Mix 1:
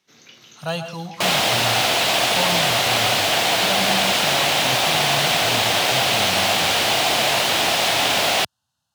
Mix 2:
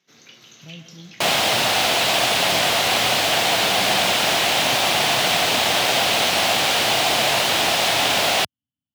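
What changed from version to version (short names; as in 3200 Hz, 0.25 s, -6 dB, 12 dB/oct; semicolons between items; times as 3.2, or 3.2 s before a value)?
speech: add vocal tract filter i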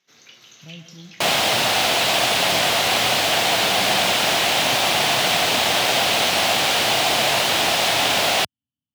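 first sound: add bell 200 Hz -6.5 dB 2.3 oct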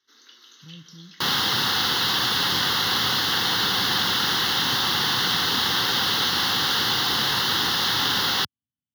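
speech: send -8.0 dB; first sound: add brick-wall FIR high-pass 230 Hz; master: add fixed phaser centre 2400 Hz, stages 6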